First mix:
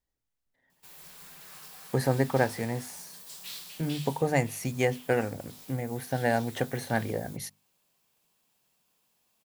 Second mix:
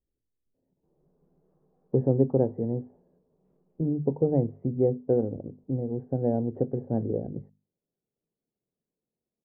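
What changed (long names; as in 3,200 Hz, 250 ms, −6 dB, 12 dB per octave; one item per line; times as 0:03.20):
speech +9.5 dB
master: add transistor ladder low-pass 520 Hz, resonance 35%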